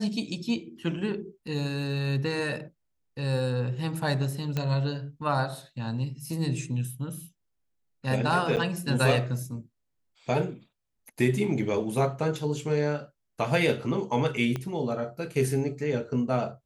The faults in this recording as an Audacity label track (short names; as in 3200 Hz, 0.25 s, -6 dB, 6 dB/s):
4.570000	4.570000	pop -16 dBFS
8.560000	8.570000	gap 8.9 ms
14.560000	14.560000	pop -18 dBFS